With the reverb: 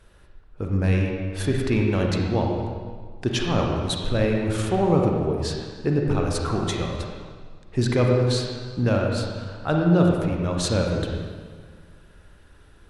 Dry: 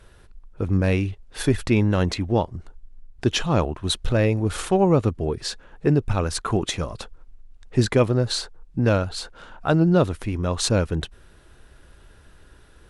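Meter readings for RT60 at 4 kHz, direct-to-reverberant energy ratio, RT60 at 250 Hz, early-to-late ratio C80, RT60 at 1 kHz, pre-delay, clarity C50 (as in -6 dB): 1.4 s, 0.0 dB, 1.9 s, 2.5 dB, 1.7 s, 37 ms, 1.0 dB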